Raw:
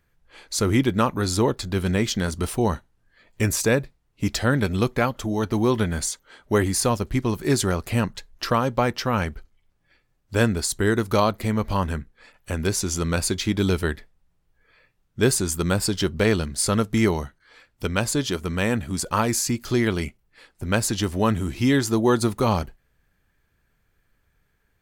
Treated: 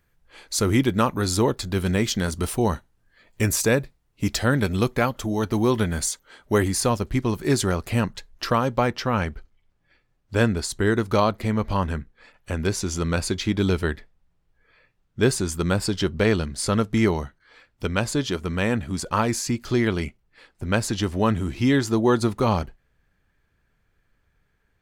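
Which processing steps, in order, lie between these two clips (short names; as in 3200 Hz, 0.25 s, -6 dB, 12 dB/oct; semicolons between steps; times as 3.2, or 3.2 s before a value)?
high shelf 8600 Hz +3 dB, from 6.68 s -3.5 dB, from 8.87 s -11.5 dB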